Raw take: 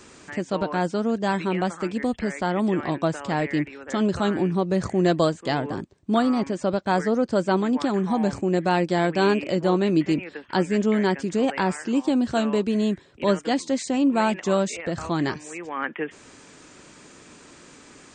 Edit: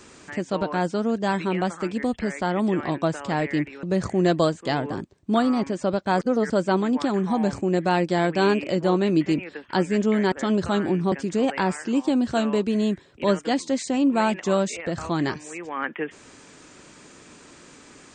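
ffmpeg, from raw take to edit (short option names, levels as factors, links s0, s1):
-filter_complex "[0:a]asplit=6[s0][s1][s2][s3][s4][s5];[s0]atrim=end=3.832[s6];[s1]atrim=start=4.628:end=7.012[s7];[s2]atrim=start=7.008:end=7.302,asetpts=PTS-STARTPTS,areverse[s8];[s3]atrim=start=7.298:end=11.122[s9];[s4]atrim=start=3.828:end=4.632[s10];[s5]atrim=start=11.118[s11];[s6][s7]acrossfade=d=0.004:c1=hsin:c2=hsin[s12];[s12][s8]acrossfade=d=0.004:c1=hsin:c2=hsin[s13];[s13][s9]acrossfade=d=0.004:c1=hsin:c2=hsin[s14];[s14][s10]acrossfade=d=0.004:c1=hsin:c2=hsin[s15];[s15][s11]acrossfade=d=0.004:c1=hsin:c2=hsin"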